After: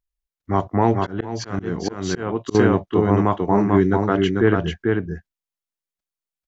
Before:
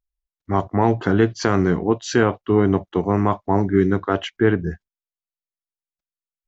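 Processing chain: delay 442 ms -3.5 dB; 0.97–2.55 s: slow attack 284 ms

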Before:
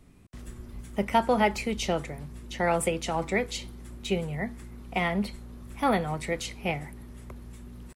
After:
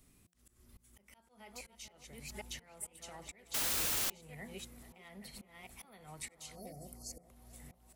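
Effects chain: chunks repeated in reverse 483 ms, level -8 dB; compression 16:1, threshold -30 dBFS, peak gain reduction 14 dB; 6.55–7.24 s: spectral selection erased 760–4200 Hz; slow attack 471 ms; pre-emphasis filter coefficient 0.8; band-passed feedback delay 438 ms, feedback 70%, band-pass 830 Hz, level -12 dB; 3.54–4.10 s: word length cut 6-bit, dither triangular; de-hum 174.9 Hz, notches 5; trim +2 dB

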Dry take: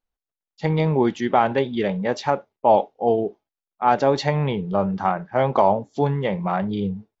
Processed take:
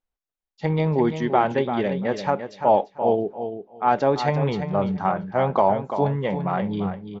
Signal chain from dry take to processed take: treble shelf 4.8 kHz -7 dB; on a send: feedback delay 341 ms, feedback 17%, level -9 dB; on the sum: trim -1.5 dB

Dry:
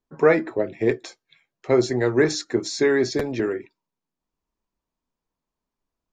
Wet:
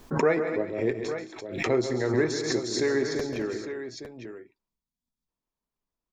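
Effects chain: time-frequency box 4.68–5.28 s, 260–3200 Hz -15 dB; on a send: multi-tap echo 136/164/220/340/855 ms -10/-13/-13/-19/-10.5 dB; on the sum: swell ahead of each attack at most 66 dB/s; trim -7 dB

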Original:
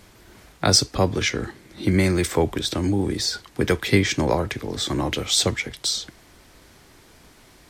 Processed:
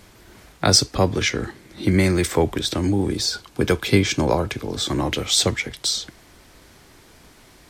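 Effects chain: 3.11–4.89 s: band-stop 1.9 kHz, Q 6.2; trim +1.5 dB

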